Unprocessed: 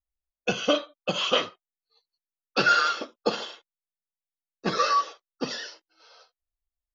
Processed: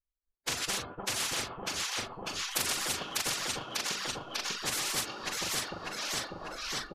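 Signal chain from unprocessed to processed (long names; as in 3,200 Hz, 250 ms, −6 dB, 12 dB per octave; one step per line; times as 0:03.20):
adaptive Wiener filter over 15 samples
camcorder AGC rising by 25 dB per second
phase-vocoder pitch shift with formants kept −7 semitones
notch filter 920 Hz, Q 15
double-tracking delay 41 ms −6 dB
delay that swaps between a low-pass and a high-pass 298 ms, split 950 Hz, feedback 68%, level −2.5 dB
reverb reduction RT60 1.5 s
amplitude tremolo 3.4 Hz, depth 53%
noise gate with hold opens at −51 dBFS
parametric band 760 Hz −7 dB 2.8 octaves
every bin compressed towards the loudest bin 10 to 1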